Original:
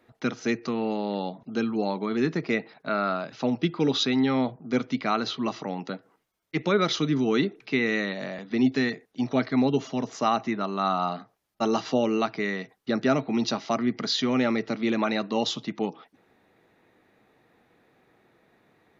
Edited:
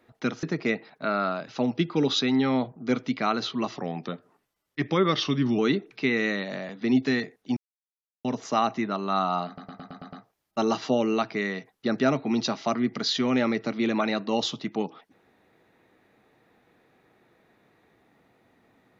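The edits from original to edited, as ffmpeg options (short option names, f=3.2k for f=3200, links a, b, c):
-filter_complex "[0:a]asplit=12[a][b][c][d][e][f][g][h][i][j][k][l];[a]atrim=end=0.432[m];[b]atrim=start=2.268:end=5.604[n];[c]atrim=start=5.6:end=7.28,asetpts=PTS-STARTPTS,asetrate=40572,aresample=44100,atrim=end_sample=80530,asetpts=PTS-STARTPTS[o];[d]atrim=start=7.276:end=9.26,asetpts=PTS-STARTPTS,afade=t=out:st=1.98:d=0.004:c=hsin[p];[e]atrim=start=9.26:end=9.94,asetpts=PTS-STARTPTS,volume=0[q];[f]atrim=start=9.94:end=11.272,asetpts=PTS-STARTPTS,afade=t=in:d=0.004:c=hsin[r];[g]atrim=start=11.158:end=11.272[s];[h]atrim=start=11.158:end=11.272[t];[i]atrim=start=11.158:end=11.272[u];[j]atrim=start=11.158:end=11.272[v];[k]atrim=start=11.158:end=11.272[w];[l]atrim=start=11.158[x];[m][n]acrossfade=d=0.004:c1=hsin:c2=hsin[y];[y][o]acrossfade=d=0.004:c1=hsin:c2=hsin[z];[p][q][r]concat=n=3:v=0:a=1[aa];[z][aa]acrossfade=d=0.004:c1=hsin:c2=hsin[ab];[ab][s]acrossfade=d=0.004:c1=hsin:c2=hsin[ac];[ac][t]acrossfade=d=0.004:c1=hsin:c2=hsin[ad];[ad][u]acrossfade=d=0.004:c1=hsin:c2=hsin[ae];[ae][v]acrossfade=d=0.004:c1=hsin:c2=hsin[af];[af][w]acrossfade=d=0.004:c1=hsin:c2=hsin[ag];[ag][x]acrossfade=d=0.004:c1=hsin:c2=hsin"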